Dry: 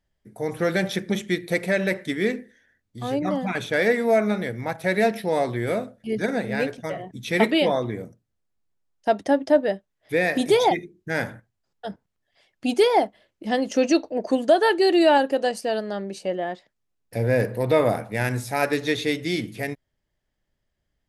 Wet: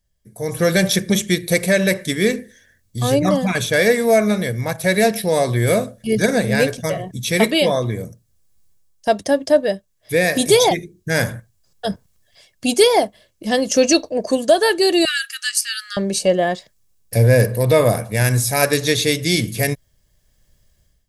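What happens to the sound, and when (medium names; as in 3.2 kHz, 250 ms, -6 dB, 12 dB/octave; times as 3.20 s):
15.05–15.97 s: brick-wall FIR high-pass 1.2 kHz
whole clip: comb 1.8 ms, depth 34%; level rider gain up to 14.5 dB; tone controls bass +7 dB, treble +14 dB; trim -3.5 dB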